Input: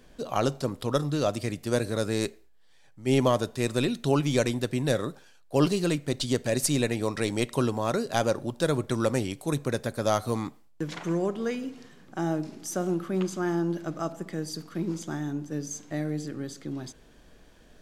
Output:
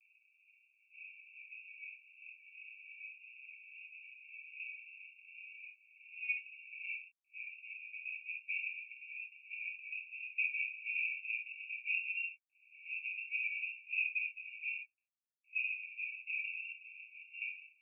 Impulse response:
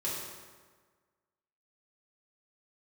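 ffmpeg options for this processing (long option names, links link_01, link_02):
-filter_complex "[0:a]areverse,acompressor=threshold=-30dB:ratio=6,aresample=11025,aeval=exprs='sgn(val(0))*max(abs(val(0))-0.00316,0)':channel_layout=same,aresample=44100,asuperpass=centerf=2500:order=20:qfactor=5.1[link_01];[1:a]atrim=start_sample=2205,afade=type=out:start_time=0.14:duration=0.01,atrim=end_sample=6615[link_02];[link_01][link_02]afir=irnorm=-1:irlink=0,volume=12.5dB"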